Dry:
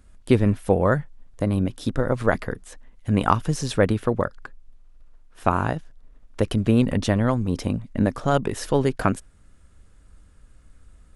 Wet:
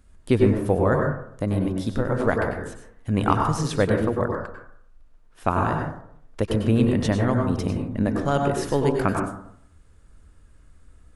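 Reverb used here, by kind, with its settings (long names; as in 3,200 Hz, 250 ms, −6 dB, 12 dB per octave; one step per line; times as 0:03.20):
dense smooth reverb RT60 0.66 s, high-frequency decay 0.3×, pre-delay 85 ms, DRR 1.5 dB
level −2.5 dB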